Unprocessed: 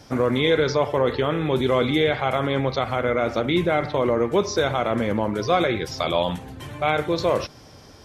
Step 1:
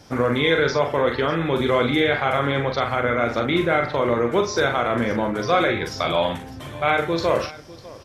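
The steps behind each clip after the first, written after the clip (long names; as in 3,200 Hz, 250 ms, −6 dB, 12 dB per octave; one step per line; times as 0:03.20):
multi-tap delay 42/600 ms −5.5/−18.5 dB
dynamic equaliser 1,600 Hz, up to +6 dB, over −40 dBFS, Q 1.4
level −1 dB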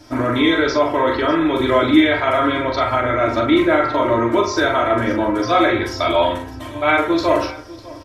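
comb filter 3.1 ms, depth 79%
convolution reverb RT60 0.50 s, pre-delay 3 ms, DRR 1.5 dB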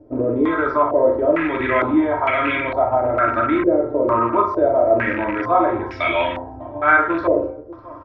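loose part that buzzes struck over −23 dBFS, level −18 dBFS
low-pass on a step sequencer 2.2 Hz 480–2,400 Hz
level −5 dB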